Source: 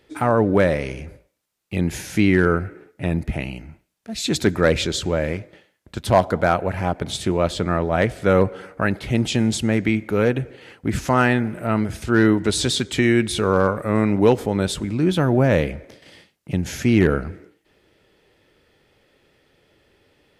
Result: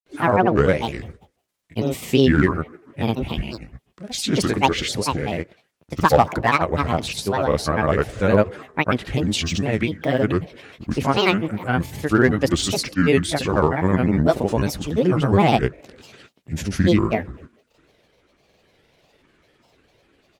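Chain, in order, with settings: pitch bend over the whole clip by +2.5 st ending unshifted; granulator, grains 20 per s, pitch spread up and down by 7 st; warped record 78 rpm, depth 160 cents; trim +2.5 dB

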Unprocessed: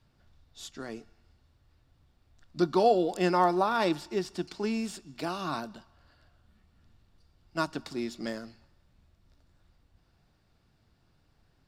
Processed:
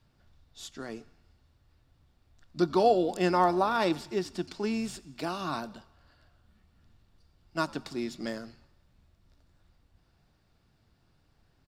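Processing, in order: frequency-shifting echo 89 ms, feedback 51%, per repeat -93 Hz, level -23.5 dB

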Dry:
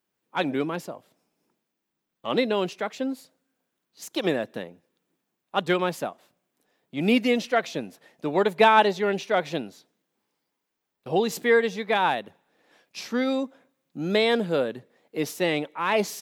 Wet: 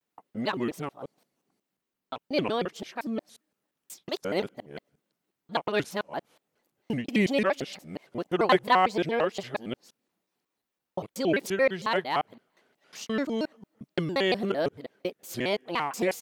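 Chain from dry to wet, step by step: time reversed locally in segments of 177 ms; short-mantissa float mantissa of 8-bit; vibrato with a chosen wave square 4.4 Hz, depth 250 cents; trim -3.5 dB

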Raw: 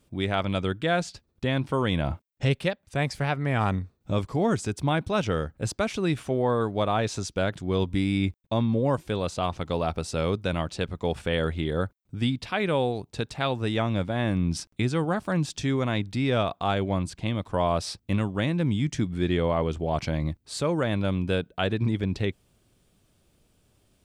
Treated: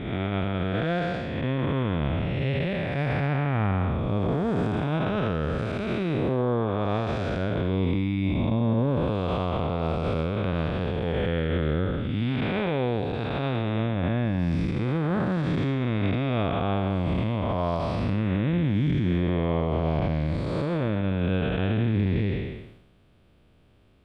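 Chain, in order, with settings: spectral blur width 394 ms; treble shelf 2.7 kHz +11.5 dB; peak limiter -22.5 dBFS, peak gain reduction 8.5 dB; transient shaper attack 0 dB, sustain +7 dB; distance through air 500 m; trim +8 dB

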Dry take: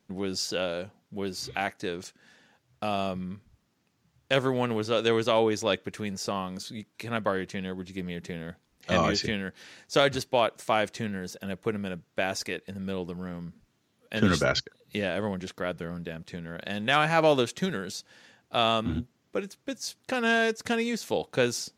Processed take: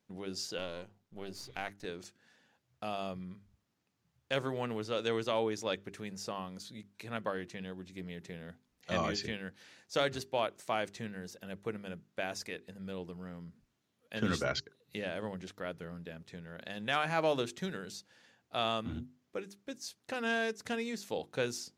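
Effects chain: 0.58–1.85 s: partial rectifier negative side -7 dB; hum notches 50/100/150/200/250/300/350/400 Hz; trim -8.5 dB

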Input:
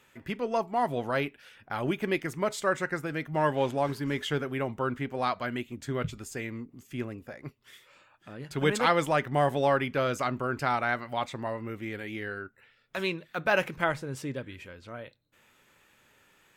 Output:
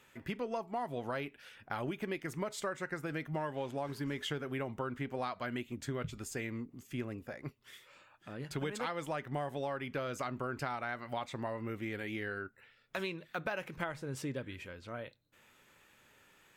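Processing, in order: compression 12:1, threshold -32 dBFS, peak gain reduction 14.5 dB; trim -1.5 dB

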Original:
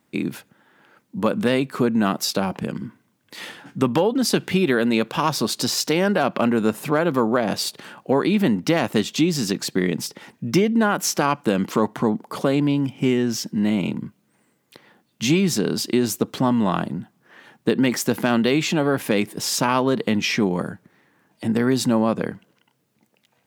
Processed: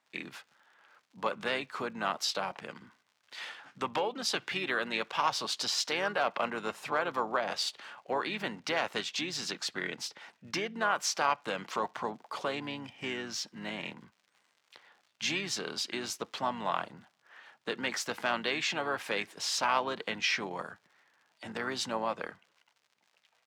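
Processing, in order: crackle 94 per s -43 dBFS; harmony voices -4 st -9 dB; three-band isolator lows -19 dB, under 590 Hz, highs -16 dB, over 6.9 kHz; trim -6 dB

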